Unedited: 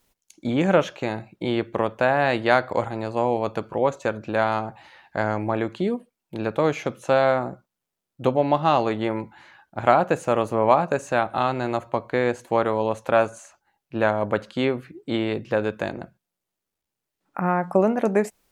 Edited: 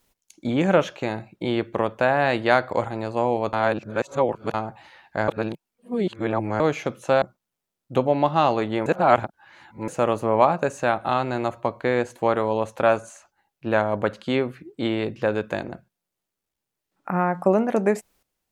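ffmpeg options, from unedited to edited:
-filter_complex "[0:a]asplit=8[s0][s1][s2][s3][s4][s5][s6][s7];[s0]atrim=end=3.532[s8];[s1]atrim=start=3.528:end=4.542,asetpts=PTS-STARTPTS,areverse[s9];[s2]atrim=start=4.538:end=5.282[s10];[s3]atrim=start=5.278:end=6.602,asetpts=PTS-STARTPTS,areverse[s11];[s4]atrim=start=6.598:end=7.222[s12];[s5]atrim=start=7.508:end=9.152[s13];[s6]atrim=start=9.148:end=10.172,asetpts=PTS-STARTPTS,areverse[s14];[s7]atrim=start=10.168[s15];[s8][s9]acrossfade=d=0.004:c1=hsin:c2=hsin[s16];[s16][s10]acrossfade=d=0.004:c1=hsin:c2=hsin[s17];[s17][s11]acrossfade=d=0.004:c1=hsin:c2=hsin[s18];[s18][s12]acrossfade=d=0.004:c1=hsin:c2=hsin[s19];[s19][s13]acrossfade=d=0.004:c1=hsin:c2=hsin[s20];[s20][s14]acrossfade=d=0.004:c1=hsin:c2=hsin[s21];[s21][s15]acrossfade=d=0.004:c1=hsin:c2=hsin"

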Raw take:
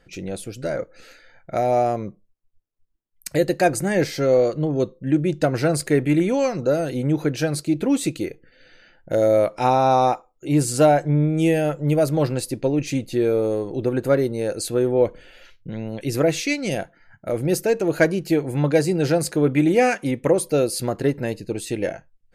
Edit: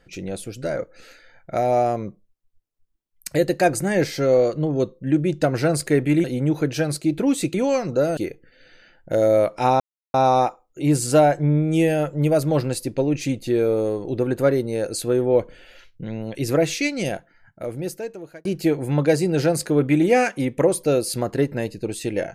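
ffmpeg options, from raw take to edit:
-filter_complex "[0:a]asplit=6[s0][s1][s2][s3][s4][s5];[s0]atrim=end=6.242[s6];[s1]atrim=start=6.868:end=8.172[s7];[s2]atrim=start=6.238:end=6.872[s8];[s3]atrim=start=8.168:end=9.8,asetpts=PTS-STARTPTS,afade=t=out:st=1.628:d=0.004:c=hsin,apad=pad_dur=0.34[s9];[s4]atrim=start=9.8:end=18.11,asetpts=PTS-STARTPTS,afade=t=in:d=0.004:c=hsin,afade=t=out:st=6.86:d=1.45[s10];[s5]atrim=start=18.11,asetpts=PTS-STARTPTS,afade=t=in:d=0.004:c=hsin[s11];[s6][s7]acrossfade=d=0.004:c1=hsin:c2=hsin[s12];[s12][s8]acrossfade=d=0.004:c1=hsin:c2=hsin[s13];[s9][s10][s11]concat=n=3:v=0:a=1[s14];[s13][s14]acrossfade=d=0.004:c1=hsin:c2=hsin"

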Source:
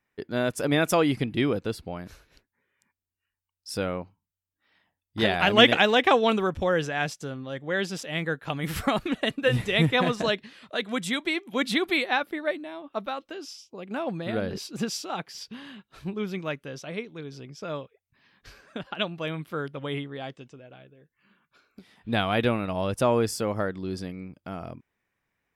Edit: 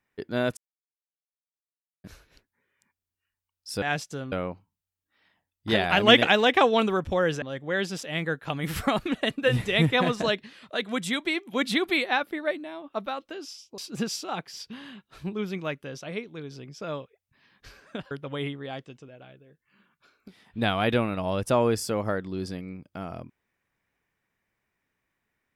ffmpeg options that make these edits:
-filter_complex "[0:a]asplit=8[s0][s1][s2][s3][s4][s5][s6][s7];[s0]atrim=end=0.57,asetpts=PTS-STARTPTS,afade=t=out:st=0.566:d=0.004:c=hsin[s8];[s1]atrim=start=0.57:end=2.04,asetpts=PTS-STARTPTS,volume=0[s9];[s2]atrim=start=2.04:end=3.822,asetpts=PTS-STARTPTS,afade=t=in:d=0.004:c=hsin[s10];[s3]atrim=start=6.918:end=7.422[s11];[s4]atrim=start=3.818:end=6.922[s12];[s5]atrim=start=7.418:end=13.782[s13];[s6]atrim=start=14.588:end=18.922[s14];[s7]atrim=start=19.618[s15];[s8][s9][s10]concat=n=3:v=0:a=1[s16];[s16][s11]acrossfade=d=0.004:c1=hsin:c2=hsin[s17];[s17][s12]acrossfade=d=0.004:c1=hsin:c2=hsin[s18];[s18][s13]acrossfade=d=0.004:c1=hsin:c2=hsin[s19];[s19][s14]acrossfade=d=0.004:c1=hsin:c2=hsin[s20];[s20][s15]acrossfade=d=0.004:c1=hsin:c2=hsin"

